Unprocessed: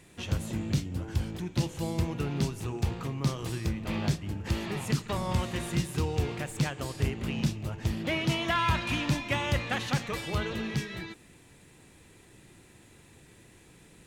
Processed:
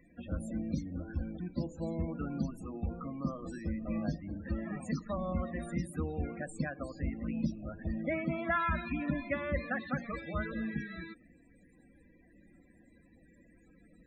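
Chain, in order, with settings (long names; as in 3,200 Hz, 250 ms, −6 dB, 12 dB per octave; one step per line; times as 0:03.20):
spectral peaks only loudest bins 32
phaser with its sweep stopped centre 600 Hz, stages 8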